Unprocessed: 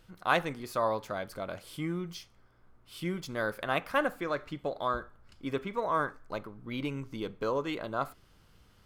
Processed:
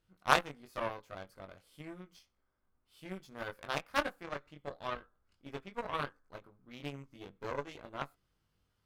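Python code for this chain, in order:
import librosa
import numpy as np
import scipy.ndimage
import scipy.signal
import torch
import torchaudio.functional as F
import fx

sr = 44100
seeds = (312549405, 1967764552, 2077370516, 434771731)

y = fx.doubler(x, sr, ms=21.0, db=-2.5)
y = fx.cheby_harmonics(y, sr, harmonics=(7, 8), levels_db=(-18, -29), full_scale_db=-6.5)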